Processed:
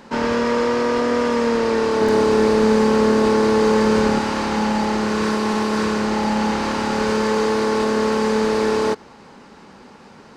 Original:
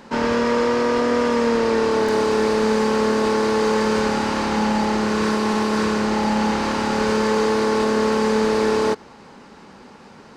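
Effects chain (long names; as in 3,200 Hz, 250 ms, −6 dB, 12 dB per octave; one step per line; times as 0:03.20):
0:02.01–0:04.19: low-shelf EQ 490 Hz +5.5 dB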